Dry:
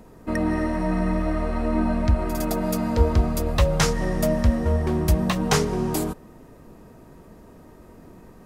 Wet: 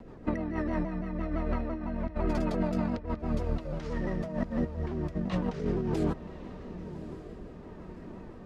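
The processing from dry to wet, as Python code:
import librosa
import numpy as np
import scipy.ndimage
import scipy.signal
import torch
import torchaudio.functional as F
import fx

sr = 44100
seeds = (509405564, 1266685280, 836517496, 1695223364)

p1 = scipy.signal.sosfilt(scipy.signal.butter(2, 3600.0, 'lowpass', fs=sr, output='sos'), x)
p2 = fx.over_compress(p1, sr, threshold_db=-26.0, ratio=-0.5)
p3 = fx.rotary_switch(p2, sr, hz=6.3, then_hz=0.65, switch_at_s=4.73)
p4 = p3 + fx.echo_diffused(p3, sr, ms=1150, feedback_pct=41, wet_db=-13, dry=0)
p5 = fx.vibrato_shape(p4, sr, shape='saw_down', rate_hz=5.9, depth_cents=100.0)
y = F.gain(torch.from_numpy(p5), -3.0).numpy()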